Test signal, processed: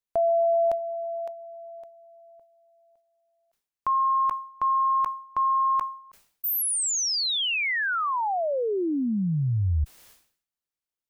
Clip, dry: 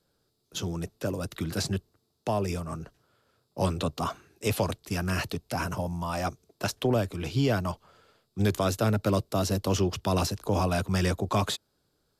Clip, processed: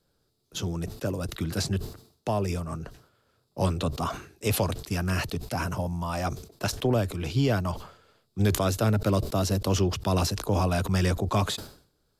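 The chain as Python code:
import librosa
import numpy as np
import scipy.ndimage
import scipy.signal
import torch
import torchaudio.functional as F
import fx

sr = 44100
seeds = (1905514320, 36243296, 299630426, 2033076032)

y = fx.low_shelf(x, sr, hz=79.0, db=7.0)
y = fx.sustainer(y, sr, db_per_s=110.0)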